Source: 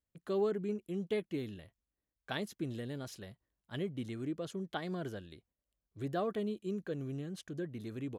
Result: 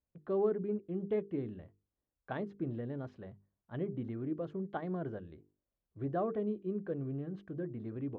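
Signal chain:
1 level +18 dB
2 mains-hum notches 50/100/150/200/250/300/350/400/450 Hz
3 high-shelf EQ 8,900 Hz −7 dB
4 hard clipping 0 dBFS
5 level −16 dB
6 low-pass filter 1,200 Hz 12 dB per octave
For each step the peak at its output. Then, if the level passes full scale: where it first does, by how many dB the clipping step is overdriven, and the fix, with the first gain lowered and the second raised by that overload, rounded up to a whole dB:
−4.5, −4.5, −4.5, −4.5, −20.5, −21.5 dBFS
no step passes full scale

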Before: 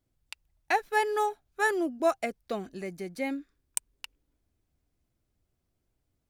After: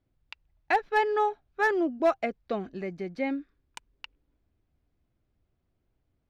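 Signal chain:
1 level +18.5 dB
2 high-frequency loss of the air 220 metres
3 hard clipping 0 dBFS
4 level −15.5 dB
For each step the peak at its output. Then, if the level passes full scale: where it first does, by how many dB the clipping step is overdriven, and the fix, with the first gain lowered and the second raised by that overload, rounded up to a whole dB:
+7.0, +4.0, 0.0, −15.5 dBFS
step 1, 4.0 dB
step 1 +14.5 dB, step 4 −11.5 dB

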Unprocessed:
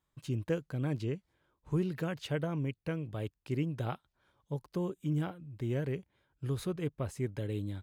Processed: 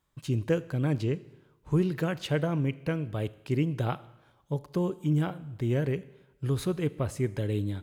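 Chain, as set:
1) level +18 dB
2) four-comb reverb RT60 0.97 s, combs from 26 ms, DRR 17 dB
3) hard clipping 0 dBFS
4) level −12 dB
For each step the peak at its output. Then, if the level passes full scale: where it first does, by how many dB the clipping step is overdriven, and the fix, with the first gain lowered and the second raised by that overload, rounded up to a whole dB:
−2.5, −2.5, −2.5, −14.5 dBFS
no step passes full scale

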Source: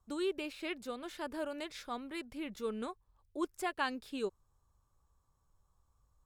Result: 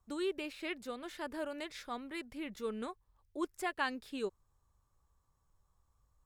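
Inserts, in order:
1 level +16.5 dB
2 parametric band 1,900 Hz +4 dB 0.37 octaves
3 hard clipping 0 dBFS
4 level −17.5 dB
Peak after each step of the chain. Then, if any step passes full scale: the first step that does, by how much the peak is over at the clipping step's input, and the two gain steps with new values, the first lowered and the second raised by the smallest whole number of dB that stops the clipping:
−4.5, −3.5, −3.5, −21.0 dBFS
no step passes full scale

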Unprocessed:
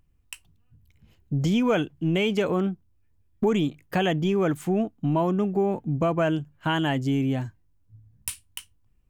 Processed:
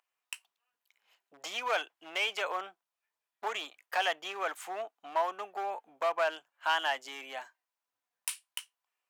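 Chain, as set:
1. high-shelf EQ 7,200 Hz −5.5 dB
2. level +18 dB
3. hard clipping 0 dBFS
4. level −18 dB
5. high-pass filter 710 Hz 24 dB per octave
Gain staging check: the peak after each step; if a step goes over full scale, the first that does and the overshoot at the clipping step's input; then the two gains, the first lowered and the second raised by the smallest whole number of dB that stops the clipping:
−13.5, +4.5, 0.0, −18.0, −16.0 dBFS
step 2, 4.5 dB
step 2 +13 dB, step 4 −13 dB

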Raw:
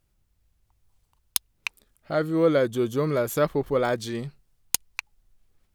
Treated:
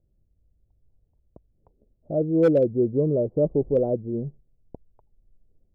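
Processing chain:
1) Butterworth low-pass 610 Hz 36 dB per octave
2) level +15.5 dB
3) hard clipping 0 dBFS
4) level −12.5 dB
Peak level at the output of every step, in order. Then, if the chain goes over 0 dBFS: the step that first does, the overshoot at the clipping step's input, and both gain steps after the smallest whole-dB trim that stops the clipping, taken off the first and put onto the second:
−12.0, +3.5, 0.0, −12.5 dBFS
step 2, 3.5 dB
step 2 +11.5 dB, step 4 −8.5 dB

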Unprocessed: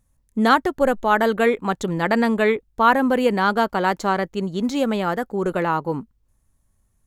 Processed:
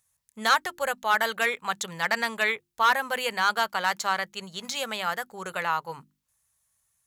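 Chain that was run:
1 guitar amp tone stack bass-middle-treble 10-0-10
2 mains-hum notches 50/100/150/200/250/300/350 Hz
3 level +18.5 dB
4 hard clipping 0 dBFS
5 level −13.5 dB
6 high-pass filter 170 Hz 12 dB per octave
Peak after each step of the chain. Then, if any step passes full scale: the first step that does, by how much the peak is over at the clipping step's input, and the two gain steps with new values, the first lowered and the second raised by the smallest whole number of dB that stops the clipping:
−11.0, −11.0, +7.5, 0.0, −13.5, −11.5 dBFS
step 3, 7.5 dB
step 3 +10.5 dB, step 5 −5.5 dB

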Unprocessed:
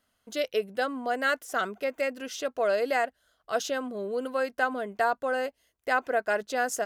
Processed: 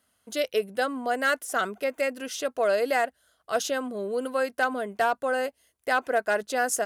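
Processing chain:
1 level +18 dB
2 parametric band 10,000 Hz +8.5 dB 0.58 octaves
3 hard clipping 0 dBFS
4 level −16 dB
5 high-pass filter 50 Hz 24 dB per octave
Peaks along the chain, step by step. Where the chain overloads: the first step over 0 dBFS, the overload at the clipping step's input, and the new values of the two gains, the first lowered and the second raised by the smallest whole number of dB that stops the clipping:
+5.0, +5.0, 0.0, −16.0, −14.0 dBFS
step 1, 5.0 dB
step 1 +13 dB, step 4 −11 dB

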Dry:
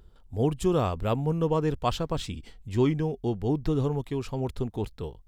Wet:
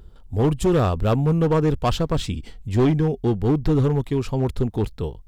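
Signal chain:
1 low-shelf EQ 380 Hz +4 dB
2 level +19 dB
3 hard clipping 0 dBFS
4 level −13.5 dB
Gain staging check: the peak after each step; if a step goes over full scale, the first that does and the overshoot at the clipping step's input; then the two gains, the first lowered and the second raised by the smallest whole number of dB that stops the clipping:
−9.5, +9.5, 0.0, −13.5 dBFS
step 2, 9.5 dB
step 2 +9 dB, step 4 −3.5 dB

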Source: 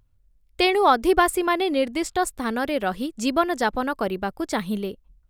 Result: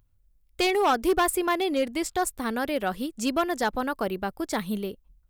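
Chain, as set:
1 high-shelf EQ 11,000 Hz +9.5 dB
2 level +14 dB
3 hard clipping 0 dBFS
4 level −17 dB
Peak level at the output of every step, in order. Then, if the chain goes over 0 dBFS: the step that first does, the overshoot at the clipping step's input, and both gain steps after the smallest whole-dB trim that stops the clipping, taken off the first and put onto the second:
−5.0, +9.0, 0.0, −17.0 dBFS
step 2, 9.0 dB
step 2 +5 dB, step 4 −8 dB

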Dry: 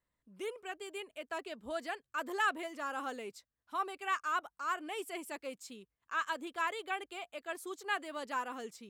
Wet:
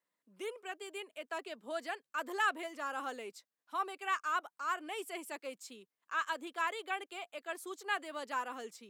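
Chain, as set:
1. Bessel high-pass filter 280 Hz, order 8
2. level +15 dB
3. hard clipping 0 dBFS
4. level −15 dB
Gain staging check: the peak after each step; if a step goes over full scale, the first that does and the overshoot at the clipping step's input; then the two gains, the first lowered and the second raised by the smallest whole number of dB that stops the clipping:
−20.5, −5.5, −5.5, −20.5 dBFS
no step passes full scale

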